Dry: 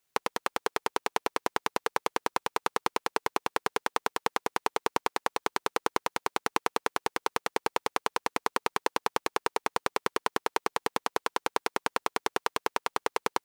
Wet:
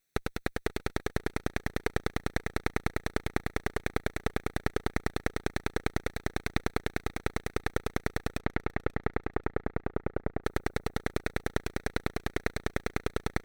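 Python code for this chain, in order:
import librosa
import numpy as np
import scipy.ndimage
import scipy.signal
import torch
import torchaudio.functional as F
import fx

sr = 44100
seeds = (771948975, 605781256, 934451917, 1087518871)

y = fx.lower_of_two(x, sr, delay_ms=0.49)
y = fx.lowpass(y, sr, hz=fx.line((8.38, 2600.0), (10.43, 1000.0)), slope=12, at=(8.38, 10.43), fade=0.02)
y = fx.echo_feedback(y, sr, ms=536, feedback_pct=30, wet_db=-22.0)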